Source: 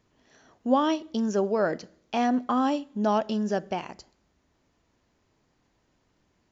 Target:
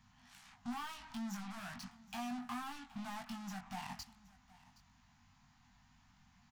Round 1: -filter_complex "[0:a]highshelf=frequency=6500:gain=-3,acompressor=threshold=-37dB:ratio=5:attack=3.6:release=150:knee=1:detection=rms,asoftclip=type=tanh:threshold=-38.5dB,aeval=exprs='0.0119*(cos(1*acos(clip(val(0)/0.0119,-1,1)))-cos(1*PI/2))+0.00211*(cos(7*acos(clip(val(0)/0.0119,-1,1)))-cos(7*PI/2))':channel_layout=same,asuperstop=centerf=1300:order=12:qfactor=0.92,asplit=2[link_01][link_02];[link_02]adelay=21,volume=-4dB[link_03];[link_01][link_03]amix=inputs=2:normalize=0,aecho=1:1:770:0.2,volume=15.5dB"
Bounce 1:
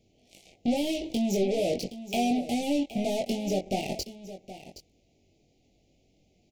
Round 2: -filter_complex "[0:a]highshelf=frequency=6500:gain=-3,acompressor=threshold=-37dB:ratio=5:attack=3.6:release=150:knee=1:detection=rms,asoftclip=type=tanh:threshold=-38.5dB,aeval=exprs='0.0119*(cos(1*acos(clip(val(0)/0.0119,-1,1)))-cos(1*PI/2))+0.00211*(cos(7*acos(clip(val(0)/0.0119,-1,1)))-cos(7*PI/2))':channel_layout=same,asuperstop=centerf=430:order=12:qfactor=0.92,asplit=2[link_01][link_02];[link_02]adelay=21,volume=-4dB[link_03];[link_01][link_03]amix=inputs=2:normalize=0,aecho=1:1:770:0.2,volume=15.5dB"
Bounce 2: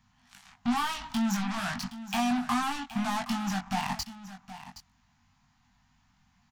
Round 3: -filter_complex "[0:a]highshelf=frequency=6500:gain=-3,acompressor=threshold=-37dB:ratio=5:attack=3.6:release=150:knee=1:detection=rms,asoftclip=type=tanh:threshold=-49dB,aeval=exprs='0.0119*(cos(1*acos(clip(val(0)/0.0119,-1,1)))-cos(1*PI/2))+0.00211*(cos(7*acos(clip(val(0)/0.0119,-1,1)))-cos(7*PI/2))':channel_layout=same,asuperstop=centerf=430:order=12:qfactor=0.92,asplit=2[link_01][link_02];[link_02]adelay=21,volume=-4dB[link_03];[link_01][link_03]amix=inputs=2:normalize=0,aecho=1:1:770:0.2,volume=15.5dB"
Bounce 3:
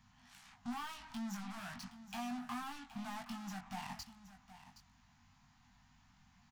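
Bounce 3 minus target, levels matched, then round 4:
echo-to-direct +6.5 dB
-filter_complex "[0:a]highshelf=frequency=6500:gain=-3,acompressor=threshold=-37dB:ratio=5:attack=3.6:release=150:knee=1:detection=rms,asoftclip=type=tanh:threshold=-49dB,aeval=exprs='0.0119*(cos(1*acos(clip(val(0)/0.0119,-1,1)))-cos(1*PI/2))+0.00211*(cos(7*acos(clip(val(0)/0.0119,-1,1)))-cos(7*PI/2))':channel_layout=same,asuperstop=centerf=430:order=12:qfactor=0.92,asplit=2[link_01][link_02];[link_02]adelay=21,volume=-4dB[link_03];[link_01][link_03]amix=inputs=2:normalize=0,aecho=1:1:770:0.0944,volume=15.5dB"

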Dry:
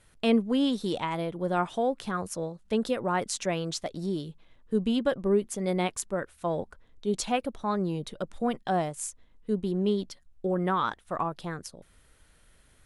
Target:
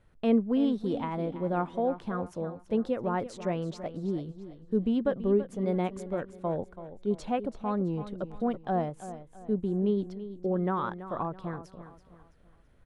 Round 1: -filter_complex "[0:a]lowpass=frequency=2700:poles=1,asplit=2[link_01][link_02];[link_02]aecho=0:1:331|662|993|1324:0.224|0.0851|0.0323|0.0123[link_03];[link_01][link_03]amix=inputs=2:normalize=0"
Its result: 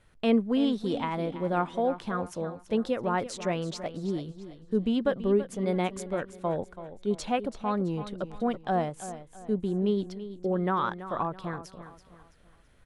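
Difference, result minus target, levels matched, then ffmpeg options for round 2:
2,000 Hz band +5.0 dB
-filter_complex "[0:a]lowpass=frequency=810:poles=1,asplit=2[link_01][link_02];[link_02]aecho=0:1:331|662|993|1324:0.224|0.0851|0.0323|0.0123[link_03];[link_01][link_03]amix=inputs=2:normalize=0"

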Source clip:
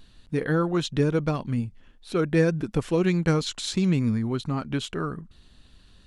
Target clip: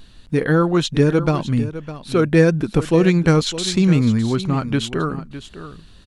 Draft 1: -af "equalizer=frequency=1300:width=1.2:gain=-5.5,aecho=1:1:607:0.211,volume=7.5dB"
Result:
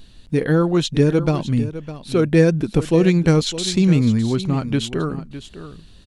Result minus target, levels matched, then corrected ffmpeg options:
1,000 Hz band −4.0 dB
-af "aecho=1:1:607:0.211,volume=7.5dB"

